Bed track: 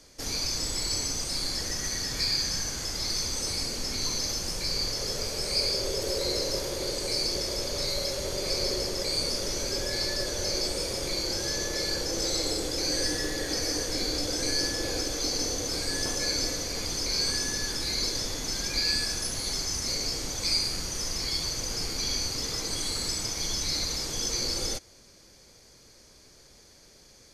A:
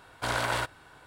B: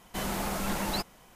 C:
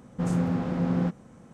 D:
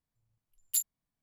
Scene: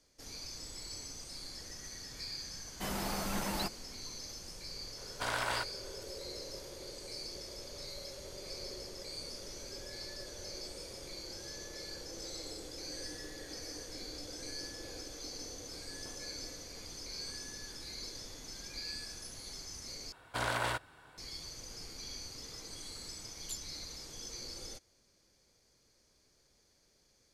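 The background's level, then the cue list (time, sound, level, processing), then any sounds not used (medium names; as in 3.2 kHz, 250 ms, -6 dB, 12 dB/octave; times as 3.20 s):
bed track -15.5 dB
2.66 s: add B -5 dB
4.98 s: add A -5 dB + bass shelf 440 Hz -6 dB
20.12 s: replace with A -5 dB
22.75 s: add D -5 dB + distance through air 75 m
not used: C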